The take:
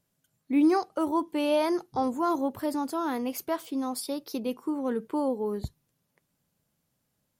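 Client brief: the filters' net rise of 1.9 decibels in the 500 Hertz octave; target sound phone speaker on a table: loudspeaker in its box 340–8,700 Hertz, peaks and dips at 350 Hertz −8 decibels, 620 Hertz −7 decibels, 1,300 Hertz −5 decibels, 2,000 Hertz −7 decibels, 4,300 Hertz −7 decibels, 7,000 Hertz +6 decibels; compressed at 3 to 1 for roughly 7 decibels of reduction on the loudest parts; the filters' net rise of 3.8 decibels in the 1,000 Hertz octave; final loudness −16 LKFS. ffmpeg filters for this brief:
ffmpeg -i in.wav -af "equalizer=frequency=500:width_type=o:gain=8,equalizer=frequency=1000:width_type=o:gain=4.5,acompressor=threshold=-24dB:ratio=3,highpass=frequency=340:width=0.5412,highpass=frequency=340:width=1.3066,equalizer=frequency=350:width_type=q:width=4:gain=-8,equalizer=frequency=620:width_type=q:width=4:gain=-7,equalizer=frequency=1300:width_type=q:width=4:gain=-5,equalizer=frequency=2000:width_type=q:width=4:gain=-7,equalizer=frequency=4300:width_type=q:width=4:gain=-7,equalizer=frequency=7000:width_type=q:width=4:gain=6,lowpass=frequency=8700:width=0.5412,lowpass=frequency=8700:width=1.3066,volume=17.5dB" out.wav

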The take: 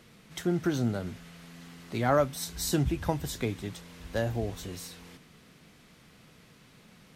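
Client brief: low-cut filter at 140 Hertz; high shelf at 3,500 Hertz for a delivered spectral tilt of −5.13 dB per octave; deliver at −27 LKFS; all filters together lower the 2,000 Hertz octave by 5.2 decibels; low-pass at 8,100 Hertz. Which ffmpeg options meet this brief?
ffmpeg -i in.wav -af "highpass=140,lowpass=8100,equalizer=frequency=2000:width_type=o:gain=-8,highshelf=frequency=3500:gain=3,volume=5.5dB" out.wav

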